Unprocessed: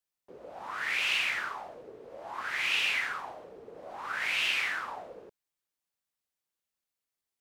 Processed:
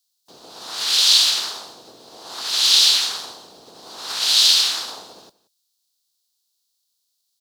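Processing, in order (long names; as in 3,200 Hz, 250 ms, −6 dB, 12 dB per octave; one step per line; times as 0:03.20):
ceiling on every frequency bin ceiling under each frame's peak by 16 dB
high-pass filter 270 Hz 6 dB per octave
high shelf with overshoot 3,000 Hz +12 dB, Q 3
notch filter 570 Hz, Q 12
on a send: single-tap delay 177 ms −20 dB
on the sum: level +3.5 dB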